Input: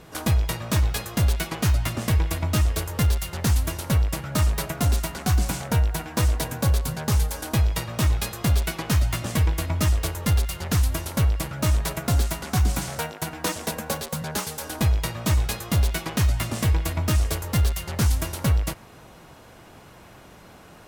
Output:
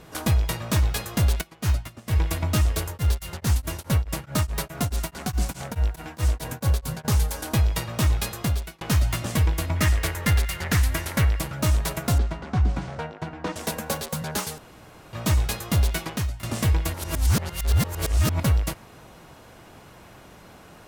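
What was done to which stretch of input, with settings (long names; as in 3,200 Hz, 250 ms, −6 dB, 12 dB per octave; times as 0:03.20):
0:01.41–0:02.16: expander for the loud parts 2.5 to 1, over −30 dBFS
0:02.88–0:07.05: tremolo along a rectified sine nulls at 4.7 Hz
0:08.35–0:08.81: fade out
0:09.76–0:11.40: parametric band 1,900 Hz +9.5 dB 0.76 octaves
0:12.18–0:13.56: head-to-tape spacing loss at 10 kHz 28 dB
0:14.58–0:15.13: fill with room tone
0:15.98–0:16.43: fade out, to −18.5 dB
0:16.94–0:18.43: reverse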